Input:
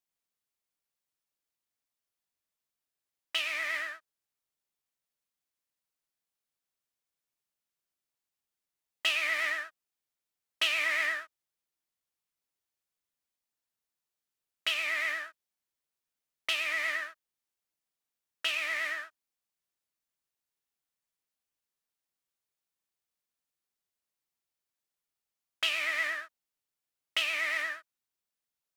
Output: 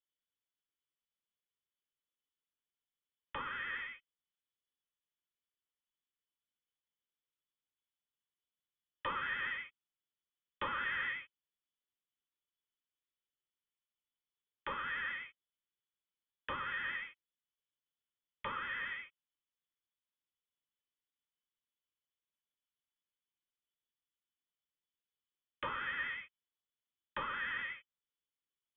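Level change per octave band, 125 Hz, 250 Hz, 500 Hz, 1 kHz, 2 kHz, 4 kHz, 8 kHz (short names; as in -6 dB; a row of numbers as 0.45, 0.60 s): n/a, +2.0 dB, -6.5 dB, +0.5 dB, -8.0 dB, -15.5 dB, under -30 dB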